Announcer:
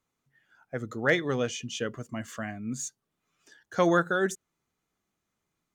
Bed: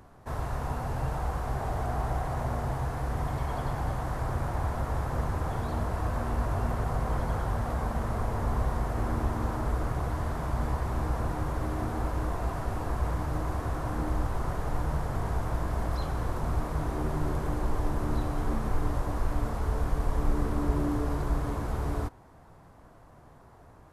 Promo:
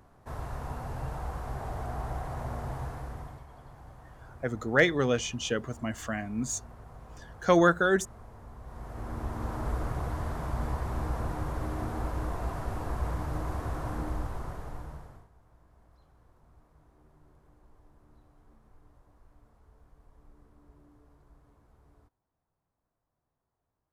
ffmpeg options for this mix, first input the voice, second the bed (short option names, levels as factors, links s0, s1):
-filter_complex "[0:a]adelay=3700,volume=1.26[s0];[1:a]volume=3.76,afade=t=out:st=2.83:d=0.62:silence=0.199526,afade=t=in:st=8.62:d=1.08:silence=0.149624,afade=t=out:st=13.87:d=1.41:silence=0.0375837[s1];[s0][s1]amix=inputs=2:normalize=0"